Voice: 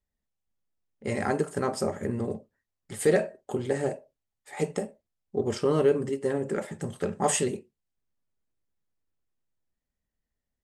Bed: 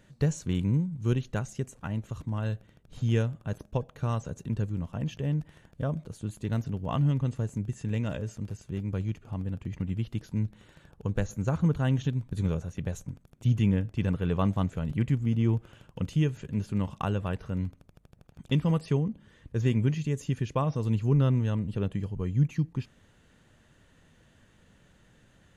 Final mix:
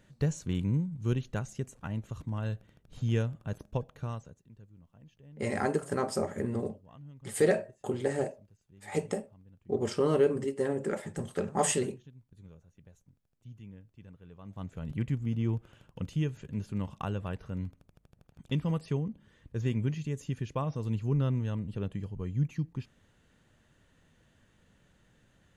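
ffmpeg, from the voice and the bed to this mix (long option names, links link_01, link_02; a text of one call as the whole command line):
ffmpeg -i stem1.wav -i stem2.wav -filter_complex "[0:a]adelay=4350,volume=-2.5dB[link_01];[1:a]volume=16dB,afade=type=out:start_time=3.84:duration=0.57:silence=0.0891251,afade=type=in:start_time=14.44:duration=0.52:silence=0.112202[link_02];[link_01][link_02]amix=inputs=2:normalize=0" out.wav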